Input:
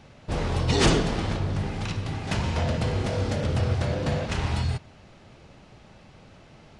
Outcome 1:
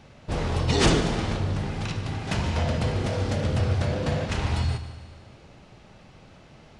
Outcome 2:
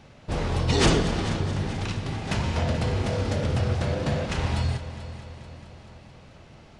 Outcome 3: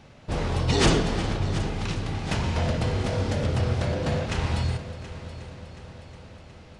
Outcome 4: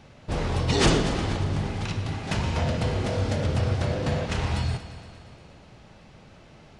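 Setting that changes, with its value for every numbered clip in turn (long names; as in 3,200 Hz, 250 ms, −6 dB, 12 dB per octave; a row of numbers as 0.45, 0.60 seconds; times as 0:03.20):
echo machine with several playback heads, delay time: 74, 218, 363, 117 milliseconds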